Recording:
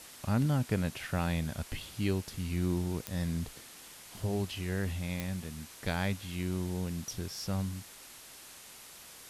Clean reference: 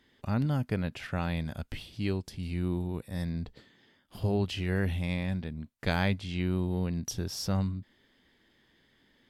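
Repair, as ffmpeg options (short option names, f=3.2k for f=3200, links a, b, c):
-af "adeclick=t=4,afwtdn=0.0035,asetnsamples=n=441:p=0,asendcmd='4.14 volume volume 4.5dB',volume=0dB"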